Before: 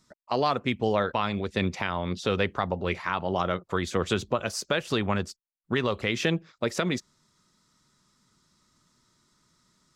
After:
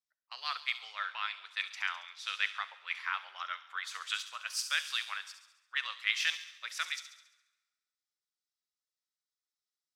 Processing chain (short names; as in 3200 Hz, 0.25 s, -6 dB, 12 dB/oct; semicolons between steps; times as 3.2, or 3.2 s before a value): HPF 1400 Hz 24 dB/oct; bell 7000 Hz -4.5 dB 0.4 oct; thin delay 69 ms, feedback 69%, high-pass 3900 Hz, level -7 dB; plate-style reverb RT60 2.6 s, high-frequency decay 0.75×, DRR 13.5 dB; three-band expander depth 70%; gain -2.5 dB